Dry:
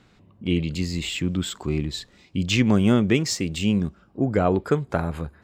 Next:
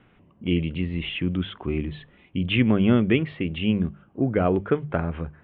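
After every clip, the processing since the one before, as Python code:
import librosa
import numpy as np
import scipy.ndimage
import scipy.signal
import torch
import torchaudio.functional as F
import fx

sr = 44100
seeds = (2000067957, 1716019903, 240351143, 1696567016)

y = scipy.signal.sosfilt(scipy.signal.butter(12, 3300.0, 'lowpass', fs=sr, output='sos'), x)
y = fx.hum_notches(y, sr, base_hz=50, count=4)
y = fx.dynamic_eq(y, sr, hz=880.0, q=1.8, threshold_db=-40.0, ratio=4.0, max_db=-4)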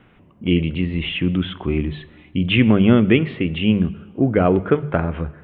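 y = fx.rev_plate(x, sr, seeds[0], rt60_s=1.4, hf_ratio=0.85, predelay_ms=0, drr_db=16.5)
y = y * librosa.db_to_amplitude(5.5)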